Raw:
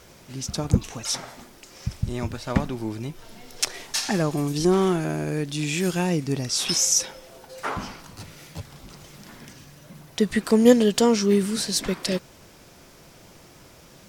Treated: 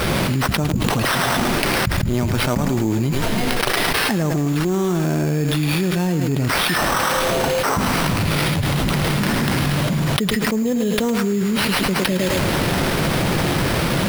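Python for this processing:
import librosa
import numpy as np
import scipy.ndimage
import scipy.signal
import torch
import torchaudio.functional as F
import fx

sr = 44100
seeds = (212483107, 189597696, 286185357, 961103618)

p1 = fx.peak_eq(x, sr, hz=160.0, db=5.0, octaves=1.7)
p2 = fx.sample_hold(p1, sr, seeds[0], rate_hz=7000.0, jitter_pct=0)
p3 = p2 + fx.echo_thinned(p2, sr, ms=108, feedback_pct=32, hz=380.0, wet_db=-9, dry=0)
p4 = fx.env_flatten(p3, sr, amount_pct=100)
y = p4 * 10.0 ** (-11.0 / 20.0)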